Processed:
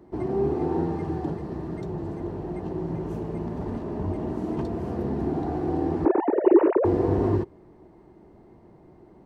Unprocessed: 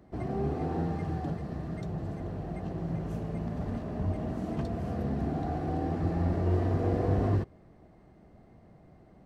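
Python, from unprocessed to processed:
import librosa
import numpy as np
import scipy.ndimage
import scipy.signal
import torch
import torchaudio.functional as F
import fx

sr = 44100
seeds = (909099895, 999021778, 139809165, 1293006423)

y = fx.sine_speech(x, sr, at=(6.05, 6.85))
y = fx.small_body(y, sr, hz=(360.0, 910.0), ring_ms=25, db=12)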